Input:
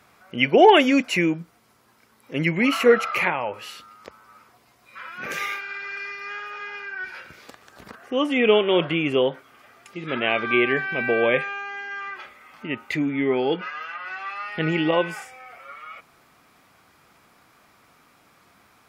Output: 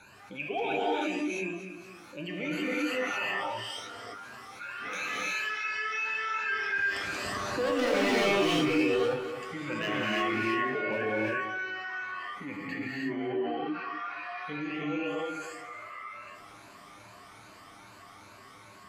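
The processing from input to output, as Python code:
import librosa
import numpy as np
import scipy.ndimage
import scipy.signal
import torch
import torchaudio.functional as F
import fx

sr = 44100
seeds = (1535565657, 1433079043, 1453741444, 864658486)

y = fx.spec_ripple(x, sr, per_octave=1.4, drift_hz=2.6, depth_db=22)
y = fx.doppler_pass(y, sr, speed_mps=25, closest_m=13.0, pass_at_s=7.38)
y = scipy.signal.sosfilt(scipy.signal.butter(2, 10000.0, 'lowpass', fs=sr, output='sos'), y)
y = np.clip(y, -10.0 ** (-22.5 / 20.0), 10.0 ** (-22.5 / 20.0))
y = fx.comb_fb(y, sr, f0_hz=100.0, decay_s=0.15, harmonics='all', damping=0.0, mix_pct=80)
y = fx.echo_feedback(y, sr, ms=242, feedback_pct=25, wet_db=-19.0)
y = fx.rev_gated(y, sr, seeds[0], gate_ms=370, shape='rising', drr_db=-7.5)
y = fx.env_flatten(y, sr, amount_pct=50)
y = y * librosa.db_to_amplitude(-5.0)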